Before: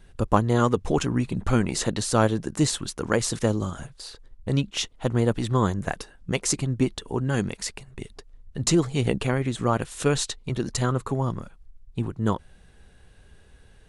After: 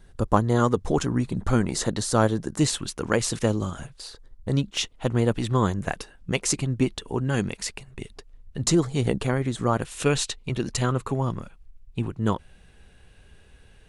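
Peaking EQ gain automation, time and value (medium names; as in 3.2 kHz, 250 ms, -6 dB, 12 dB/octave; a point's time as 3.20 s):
peaking EQ 2.6 kHz 0.5 oct
-6 dB
from 2.59 s +3 dB
from 4.07 s -5.5 dB
from 4.77 s +3 dB
from 8.67 s -4.5 dB
from 9.85 s +5.5 dB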